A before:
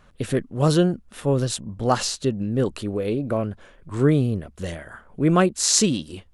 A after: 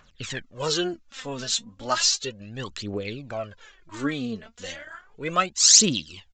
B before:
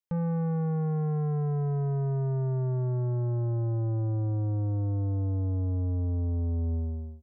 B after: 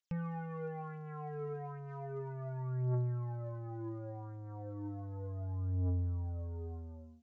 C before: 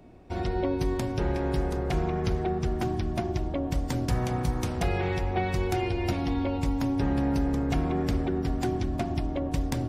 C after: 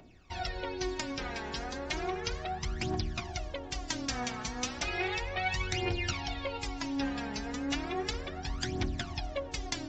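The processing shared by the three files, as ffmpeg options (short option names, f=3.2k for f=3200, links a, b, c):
-af "tiltshelf=f=1.1k:g=-9,aphaser=in_gain=1:out_gain=1:delay=4.7:decay=0.69:speed=0.34:type=triangular,aresample=16000,aresample=44100,volume=-5dB"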